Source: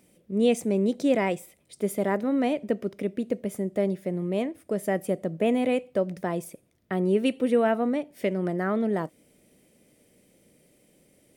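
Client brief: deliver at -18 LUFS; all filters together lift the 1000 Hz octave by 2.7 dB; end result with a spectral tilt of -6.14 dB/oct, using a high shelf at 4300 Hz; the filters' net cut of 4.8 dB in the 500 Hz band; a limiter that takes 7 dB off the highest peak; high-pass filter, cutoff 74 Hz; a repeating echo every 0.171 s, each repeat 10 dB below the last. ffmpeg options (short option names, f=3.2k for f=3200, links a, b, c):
-af "highpass=74,equalizer=f=500:t=o:g=-8,equalizer=f=1k:t=o:g=8,highshelf=f=4.3k:g=-5.5,alimiter=limit=-18.5dB:level=0:latency=1,aecho=1:1:171|342|513|684:0.316|0.101|0.0324|0.0104,volume=12dB"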